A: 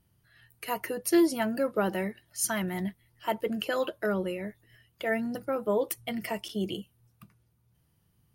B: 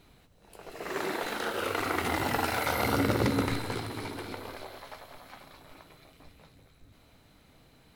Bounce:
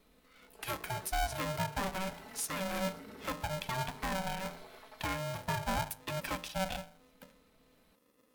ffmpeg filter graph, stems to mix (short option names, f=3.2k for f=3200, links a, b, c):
-filter_complex "[0:a]bandreject=f=52.56:t=h:w=4,bandreject=f=105.12:t=h:w=4,bandreject=f=157.68:t=h:w=4,bandreject=f=210.24:t=h:w=4,bandreject=f=262.8:t=h:w=4,bandreject=f=315.36:t=h:w=4,bandreject=f=367.92:t=h:w=4,bandreject=f=420.48:t=h:w=4,bandreject=f=473.04:t=h:w=4,bandreject=f=525.6:t=h:w=4,bandreject=f=578.16:t=h:w=4,bandreject=f=630.72:t=h:w=4,bandreject=f=683.28:t=h:w=4,bandreject=f=735.84:t=h:w=4,bandreject=f=788.4:t=h:w=4,bandreject=f=840.96:t=h:w=4,bandreject=f=893.52:t=h:w=4,aeval=exprs='val(0)*sgn(sin(2*PI*380*n/s))':c=same,volume=-1.5dB[a];[1:a]aecho=1:1:4.6:0.92,acompressor=threshold=-33dB:ratio=6,alimiter=level_in=6dB:limit=-24dB:level=0:latency=1:release=25,volume=-6dB,volume=-11.5dB[b];[a][b]amix=inputs=2:normalize=0,alimiter=level_in=1dB:limit=-24dB:level=0:latency=1:release=406,volume=-1dB"